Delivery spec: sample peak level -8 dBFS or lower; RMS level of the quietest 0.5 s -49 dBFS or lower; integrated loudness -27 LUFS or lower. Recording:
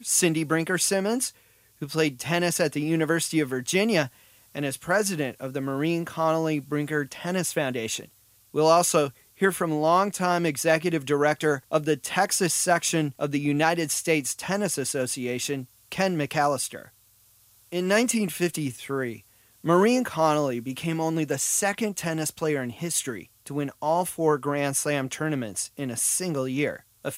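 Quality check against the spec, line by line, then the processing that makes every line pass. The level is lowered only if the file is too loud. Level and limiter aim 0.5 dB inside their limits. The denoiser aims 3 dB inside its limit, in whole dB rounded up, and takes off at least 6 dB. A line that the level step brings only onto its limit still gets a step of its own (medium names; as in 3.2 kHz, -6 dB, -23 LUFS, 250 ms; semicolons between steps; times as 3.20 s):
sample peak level -7.0 dBFS: fail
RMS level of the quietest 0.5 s -59 dBFS: pass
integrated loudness -25.5 LUFS: fail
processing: trim -2 dB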